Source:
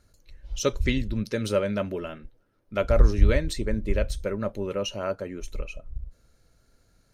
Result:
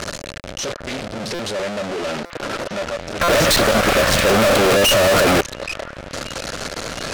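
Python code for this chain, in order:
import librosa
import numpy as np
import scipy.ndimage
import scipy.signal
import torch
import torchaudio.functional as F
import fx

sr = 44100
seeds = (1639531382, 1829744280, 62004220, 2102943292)

y = np.sign(x) * np.sqrt(np.mean(np.square(x)))
y = fx.highpass(y, sr, hz=350.0, slope=6)
y = fx.peak_eq(y, sr, hz=580.0, db=3.5, octaves=0.77)
y = fx.power_curve(y, sr, exponent=0.5)
y = scipy.signal.sosfilt(scipy.signal.butter(2, 6600.0, 'lowpass', fs=sr, output='sos'), y)
y = fx.echo_stepped(y, sr, ms=703, hz=1400.0, octaves=0.7, feedback_pct=70, wet_db=-8.5)
y = fx.fuzz(y, sr, gain_db=44.0, gate_db=-47.0, at=(3.21, 5.41))
y = fx.buffer_glitch(y, sr, at_s=(1.34, 2.25, 3.23), block=256, repeats=8)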